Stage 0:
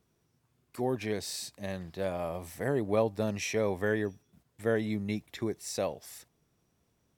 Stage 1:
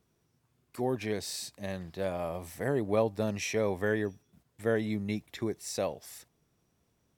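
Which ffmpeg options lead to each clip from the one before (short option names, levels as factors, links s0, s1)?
-af anull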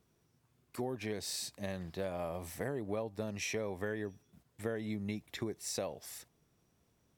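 -af "acompressor=threshold=0.02:ratio=6"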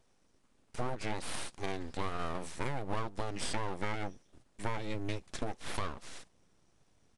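-af "asubboost=boost=3:cutoff=83,aeval=exprs='abs(val(0))':c=same,aresample=22050,aresample=44100,volume=1.78"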